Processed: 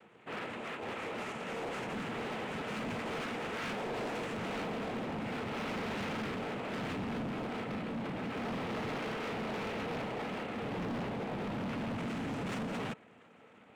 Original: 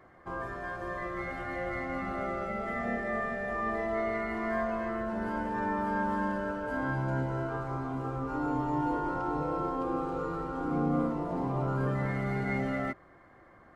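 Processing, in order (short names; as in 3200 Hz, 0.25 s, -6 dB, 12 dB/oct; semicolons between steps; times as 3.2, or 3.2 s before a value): noise vocoder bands 4; small resonant body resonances 220/450/1300 Hz, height 8 dB; hard clip -31.5 dBFS, distortion -7 dB; gain -3.5 dB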